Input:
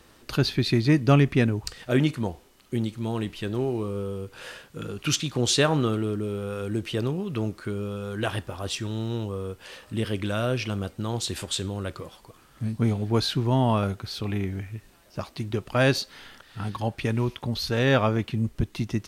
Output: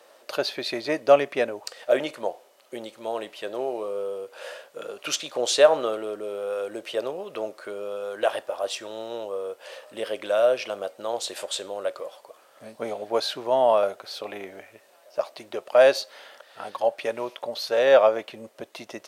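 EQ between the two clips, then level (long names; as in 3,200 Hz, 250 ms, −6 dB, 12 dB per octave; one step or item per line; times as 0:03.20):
high-pass with resonance 580 Hz, resonance Q 4.9
−1.5 dB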